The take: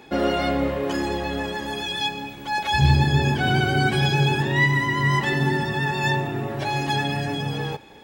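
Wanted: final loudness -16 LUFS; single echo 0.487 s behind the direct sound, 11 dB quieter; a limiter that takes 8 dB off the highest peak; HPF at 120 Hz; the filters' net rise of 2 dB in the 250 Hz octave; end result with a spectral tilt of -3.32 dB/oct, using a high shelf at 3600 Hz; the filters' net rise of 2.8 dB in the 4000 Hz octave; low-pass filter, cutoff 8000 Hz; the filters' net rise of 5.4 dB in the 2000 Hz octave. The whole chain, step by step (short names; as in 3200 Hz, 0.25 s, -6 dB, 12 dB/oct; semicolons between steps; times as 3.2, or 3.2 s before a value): HPF 120 Hz; LPF 8000 Hz; bell 250 Hz +3.5 dB; bell 2000 Hz +7 dB; high shelf 3600 Hz -7.5 dB; bell 4000 Hz +5.5 dB; limiter -12.5 dBFS; echo 0.487 s -11 dB; gain +5.5 dB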